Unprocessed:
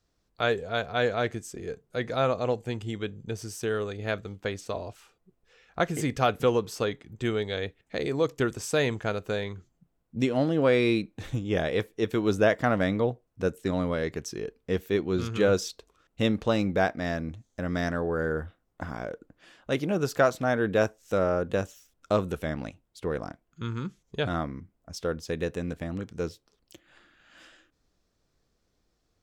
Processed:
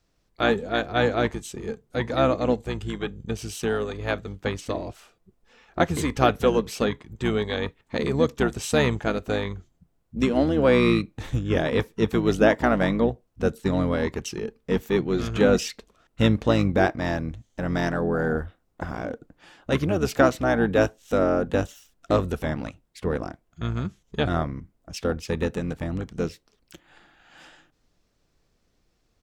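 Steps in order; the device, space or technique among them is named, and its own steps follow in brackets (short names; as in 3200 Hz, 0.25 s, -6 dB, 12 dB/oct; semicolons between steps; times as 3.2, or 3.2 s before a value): octave pedal (harmoniser -12 st -5 dB); gain +3 dB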